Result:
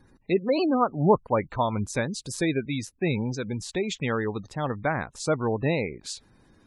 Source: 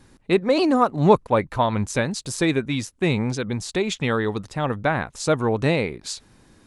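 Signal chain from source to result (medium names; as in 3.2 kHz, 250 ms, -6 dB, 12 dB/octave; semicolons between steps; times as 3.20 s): spectral gate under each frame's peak -25 dB strong; trim -4.5 dB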